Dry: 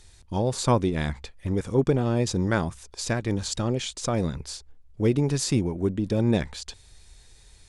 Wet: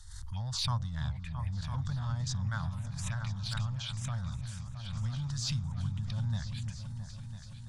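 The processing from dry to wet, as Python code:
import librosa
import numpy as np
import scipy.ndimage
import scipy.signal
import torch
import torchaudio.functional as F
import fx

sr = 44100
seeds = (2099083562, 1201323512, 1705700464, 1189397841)

p1 = np.clip(x, -10.0 ** (-25.5 / 20.0), 10.0 ** (-25.5 / 20.0))
p2 = x + (p1 * librosa.db_to_amplitude(-11.5))
p3 = fx.env_phaser(p2, sr, low_hz=390.0, high_hz=2400.0, full_db=-20.0)
p4 = scipy.signal.sosfilt(scipy.signal.cheby1(2, 1.0, [110.0, 1300.0], 'bandstop', fs=sr, output='sos'), p3)
p5 = fx.high_shelf(p4, sr, hz=7400.0, db=-6.0)
p6 = fx.echo_opening(p5, sr, ms=333, hz=400, octaves=2, feedback_pct=70, wet_db=-6)
p7 = fx.pre_swell(p6, sr, db_per_s=42.0)
y = p7 * librosa.db_to_amplitude(-6.5)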